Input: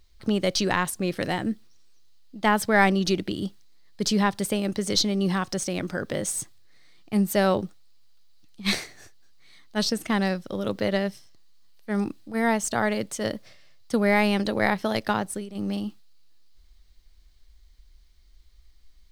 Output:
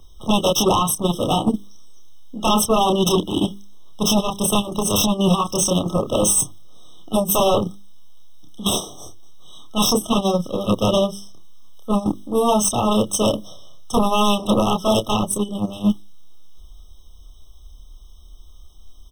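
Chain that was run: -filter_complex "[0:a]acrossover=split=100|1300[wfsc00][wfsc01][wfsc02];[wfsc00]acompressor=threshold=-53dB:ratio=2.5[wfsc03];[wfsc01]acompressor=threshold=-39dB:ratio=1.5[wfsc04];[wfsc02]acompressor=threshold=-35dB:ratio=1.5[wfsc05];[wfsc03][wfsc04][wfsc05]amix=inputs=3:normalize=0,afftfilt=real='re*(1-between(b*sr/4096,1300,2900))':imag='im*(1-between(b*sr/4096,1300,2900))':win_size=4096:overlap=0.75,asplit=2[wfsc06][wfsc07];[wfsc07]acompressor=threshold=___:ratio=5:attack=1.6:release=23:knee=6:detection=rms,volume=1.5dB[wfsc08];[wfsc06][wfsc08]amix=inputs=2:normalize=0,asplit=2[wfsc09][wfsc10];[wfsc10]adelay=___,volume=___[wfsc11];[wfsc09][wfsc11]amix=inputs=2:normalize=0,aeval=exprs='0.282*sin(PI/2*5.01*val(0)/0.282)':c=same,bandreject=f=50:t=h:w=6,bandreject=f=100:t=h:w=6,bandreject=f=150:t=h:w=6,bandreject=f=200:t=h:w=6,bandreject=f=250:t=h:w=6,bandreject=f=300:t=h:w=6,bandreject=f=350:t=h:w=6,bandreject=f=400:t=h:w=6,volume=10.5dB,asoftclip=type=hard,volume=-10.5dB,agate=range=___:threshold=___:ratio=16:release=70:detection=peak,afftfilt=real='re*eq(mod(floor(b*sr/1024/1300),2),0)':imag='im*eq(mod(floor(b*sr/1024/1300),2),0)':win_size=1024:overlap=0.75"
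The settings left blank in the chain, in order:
-42dB, 29, -4dB, -11dB, -17dB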